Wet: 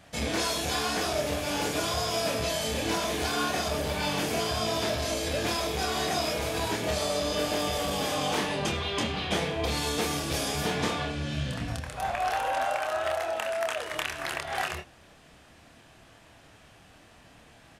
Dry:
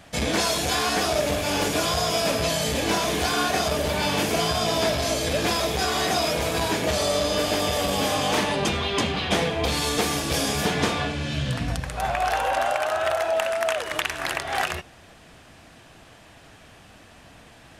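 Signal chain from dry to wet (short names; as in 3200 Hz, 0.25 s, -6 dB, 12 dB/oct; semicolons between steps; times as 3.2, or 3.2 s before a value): doubler 27 ms -5.5 dB; gain -6.5 dB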